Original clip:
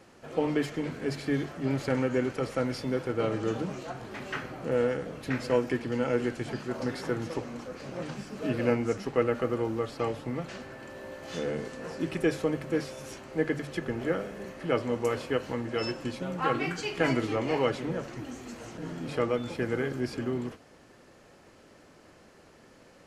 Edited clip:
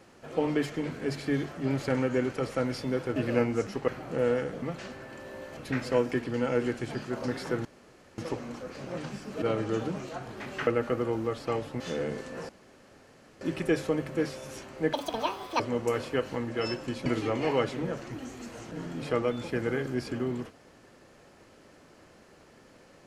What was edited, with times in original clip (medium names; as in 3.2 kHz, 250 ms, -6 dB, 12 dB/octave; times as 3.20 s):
3.16–4.41 s: swap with 8.47–9.19 s
7.23 s: insert room tone 0.53 s
10.32–11.27 s: move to 5.15 s
11.96 s: insert room tone 0.92 s
13.48–14.77 s: speed 193%
16.23–17.12 s: delete